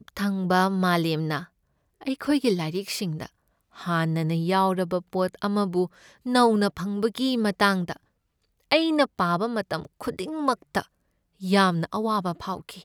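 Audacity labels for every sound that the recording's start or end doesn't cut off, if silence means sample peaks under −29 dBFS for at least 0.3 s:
2.030000	3.260000	sound
3.810000	5.860000	sound
6.260000	7.930000	sound
8.710000	10.820000	sound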